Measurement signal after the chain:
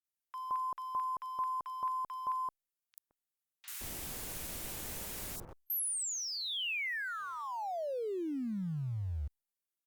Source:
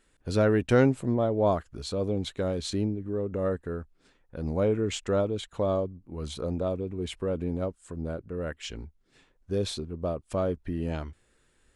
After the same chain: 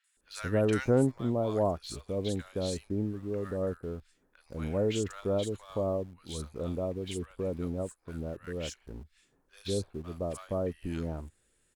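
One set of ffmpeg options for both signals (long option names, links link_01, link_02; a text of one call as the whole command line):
ffmpeg -i in.wav -filter_complex "[0:a]acrossover=split=1200|4400[link_01][link_02][link_03];[link_03]adelay=40[link_04];[link_01]adelay=170[link_05];[link_05][link_02][link_04]amix=inputs=3:normalize=0,acrossover=split=3300[link_06][link_07];[link_07]acompressor=threshold=-41dB:ratio=4:attack=1:release=60[link_08];[link_06][link_08]amix=inputs=2:normalize=0,highshelf=frequency=5400:gain=11.5,asplit=2[link_09][link_10];[link_10]aeval=exprs='val(0)*gte(abs(val(0)),0.01)':channel_layout=same,volume=-8dB[link_11];[link_09][link_11]amix=inputs=2:normalize=0,volume=-6.5dB" -ar 48000 -c:a libopus -b:a 192k out.opus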